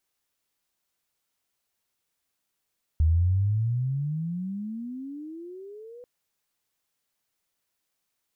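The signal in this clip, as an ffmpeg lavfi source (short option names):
-f lavfi -i "aevalsrc='pow(10,(-17-25*t/3.04)/20)*sin(2*PI*76.3*3.04/(32.5*log(2)/12)*(exp(32.5*log(2)/12*t/3.04)-1))':d=3.04:s=44100"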